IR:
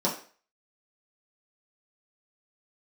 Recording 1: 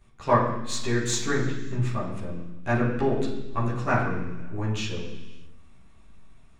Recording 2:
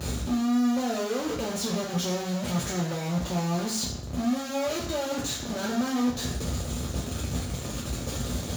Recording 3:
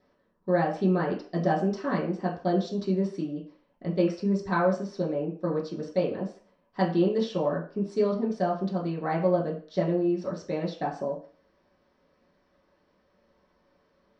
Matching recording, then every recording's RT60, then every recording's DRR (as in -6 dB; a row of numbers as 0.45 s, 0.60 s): 3; no single decay rate, 0.60 s, 0.40 s; -8.0 dB, -3.0 dB, -6.0 dB